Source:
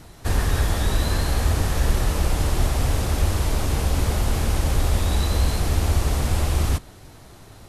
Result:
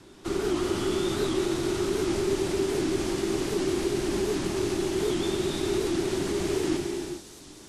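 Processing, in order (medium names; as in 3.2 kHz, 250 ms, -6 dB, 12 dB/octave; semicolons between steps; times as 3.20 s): low-pass 8.5 kHz 12 dB/octave; bass shelf 160 Hz -4 dB; peak limiter -16 dBFS, peak gain reduction 5 dB; frequency shift -420 Hz; on a send: feedback echo behind a high-pass 304 ms, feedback 71%, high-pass 4.9 kHz, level -7 dB; on the sum: gated-style reverb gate 450 ms flat, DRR 1 dB; warped record 78 rpm, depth 160 cents; trim -4.5 dB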